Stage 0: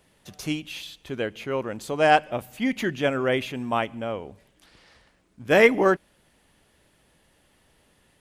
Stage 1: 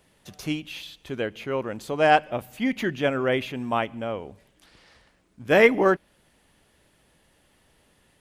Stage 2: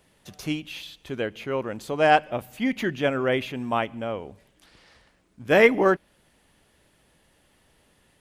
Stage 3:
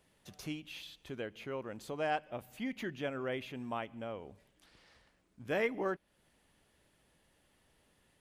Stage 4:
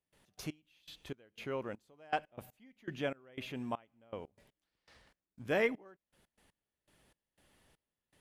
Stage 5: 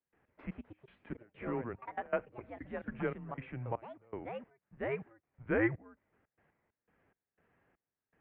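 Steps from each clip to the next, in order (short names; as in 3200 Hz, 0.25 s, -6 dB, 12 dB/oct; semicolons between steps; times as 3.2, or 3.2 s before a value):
dynamic EQ 8100 Hz, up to -5 dB, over -49 dBFS, Q 0.85
nothing audible
compressor 1.5:1, threshold -35 dBFS, peak gain reduction 9 dB; gain -8.5 dB
step gate ".x.x...xx..xxx.." 120 bpm -24 dB; gain +2 dB
in parallel at -11.5 dB: backlash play -48.5 dBFS; on the sum: echoes that change speed 0.185 s, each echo +3 st, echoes 3, each echo -6 dB; mistuned SSB -120 Hz 200–2300 Hz; gain -1 dB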